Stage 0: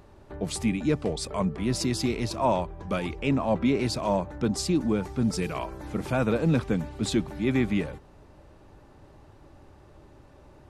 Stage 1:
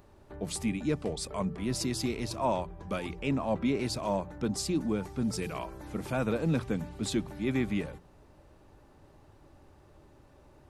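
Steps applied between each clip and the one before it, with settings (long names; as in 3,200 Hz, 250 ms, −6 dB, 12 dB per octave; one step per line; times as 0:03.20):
high-shelf EQ 10,000 Hz +7.5 dB
hum removal 58.92 Hz, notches 3
level −5 dB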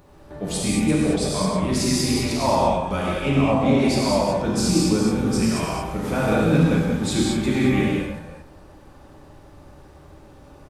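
delay that plays each chunk backwards 182 ms, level −6.5 dB
slap from a distant wall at 16 metres, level −12 dB
reverb whose tail is shaped and stops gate 250 ms flat, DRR −5.5 dB
level +4 dB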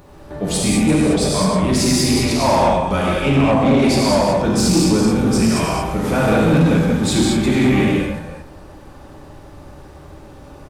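soft clipping −15 dBFS, distortion −15 dB
level +7 dB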